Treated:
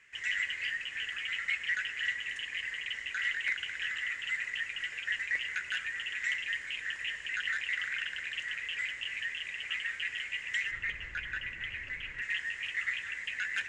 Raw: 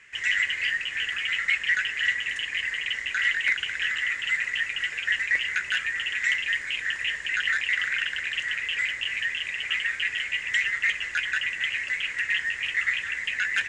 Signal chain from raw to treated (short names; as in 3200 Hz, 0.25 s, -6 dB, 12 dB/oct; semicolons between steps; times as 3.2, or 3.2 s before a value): 10.71–12.22 RIAA curve playback; on a send: reverb RT60 1.0 s, pre-delay 83 ms, DRR 15 dB; on the sum: gain -8.5 dB